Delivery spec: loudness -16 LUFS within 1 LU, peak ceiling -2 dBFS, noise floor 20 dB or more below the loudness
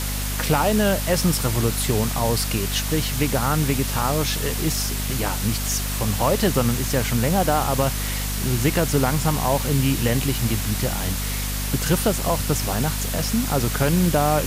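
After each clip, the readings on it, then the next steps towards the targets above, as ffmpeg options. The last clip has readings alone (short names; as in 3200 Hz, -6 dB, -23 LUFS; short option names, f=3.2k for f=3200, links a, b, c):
hum 50 Hz; harmonics up to 250 Hz; hum level -25 dBFS; noise floor -26 dBFS; noise floor target -42 dBFS; loudness -21.5 LUFS; peak -6.5 dBFS; loudness target -16.0 LUFS
-> -af "bandreject=f=50:t=h:w=4,bandreject=f=100:t=h:w=4,bandreject=f=150:t=h:w=4,bandreject=f=200:t=h:w=4,bandreject=f=250:t=h:w=4"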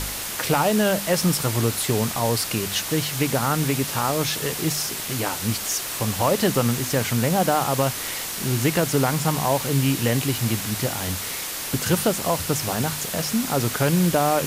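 hum none; noise floor -30 dBFS; noise floor target -43 dBFS
-> -af "afftdn=nr=13:nf=-30"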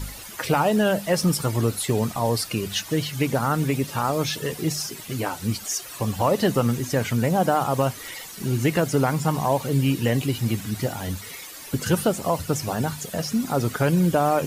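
noise floor -39 dBFS; noise floor target -44 dBFS
-> -af "afftdn=nr=6:nf=-39"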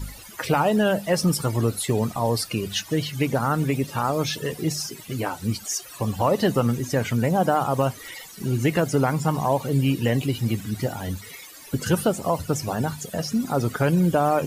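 noise floor -43 dBFS; noise floor target -44 dBFS
-> -af "afftdn=nr=6:nf=-43"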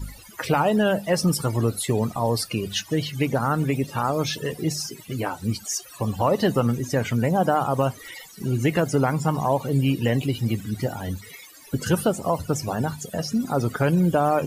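noise floor -46 dBFS; loudness -24.0 LUFS; peak -8.0 dBFS; loudness target -16.0 LUFS
-> -af "volume=8dB,alimiter=limit=-2dB:level=0:latency=1"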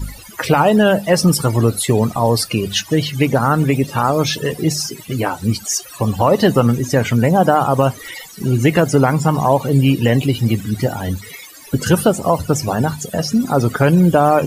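loudness -16.0 LUFS; peak -2.0 dBFS; noise floor -38 dBFS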